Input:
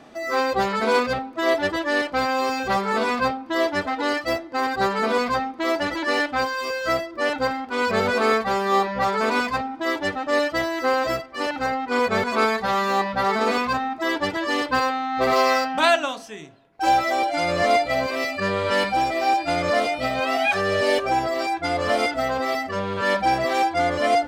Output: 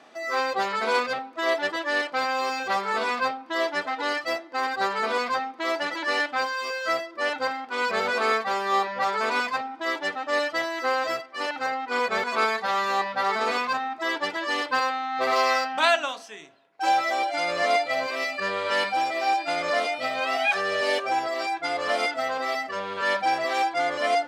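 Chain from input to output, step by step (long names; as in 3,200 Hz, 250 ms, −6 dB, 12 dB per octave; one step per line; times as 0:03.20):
meter weighting curve A
level −2.5 dB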